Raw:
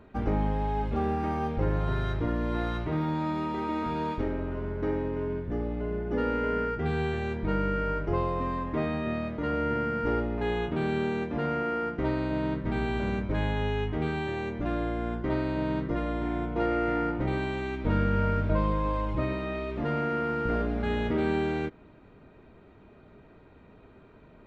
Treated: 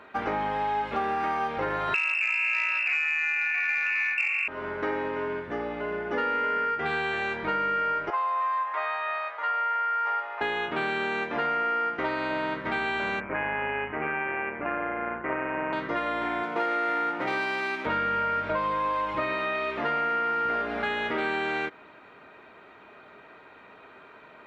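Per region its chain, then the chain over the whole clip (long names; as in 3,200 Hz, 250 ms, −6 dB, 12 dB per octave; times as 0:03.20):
0:01.94–0:04.48: voice inversion scrambler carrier 2,700 Hz + saturating transformer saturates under 1,700 Hz
0:08.10–0:10.41: high-pass filter 870 Hz 24 dB per octave + tilt shelving filter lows +8.5 dB, about 1,100 Hz
0:13.20–0:15.73: Butterworth low-pass 2,700 Hz 72 dB per octave + amplitude modulation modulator 140 Hz, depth 35%
0:16.43–0:17.86: high-pass filter 140 Hz 24 dB per octave + windowed peak hold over 3 samples
whole clip: high-pass filter 740 Hz 6 dB per octave; parametric band 1,600 Hz +9.5 dB 2.9 octaves; downward compressor, threshold −29 dBFS; level +4.5 dB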